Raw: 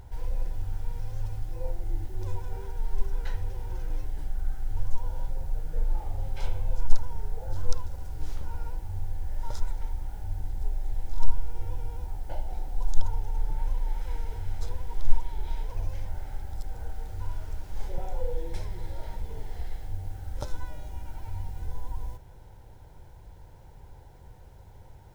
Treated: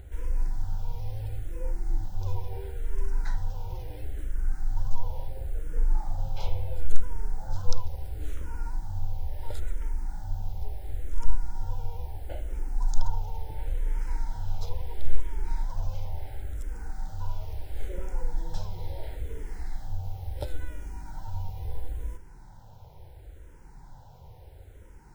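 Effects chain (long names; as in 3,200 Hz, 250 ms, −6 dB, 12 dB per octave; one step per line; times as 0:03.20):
frequency shifter mixed with the dry sound −0.73 Hz
level +3.5 dB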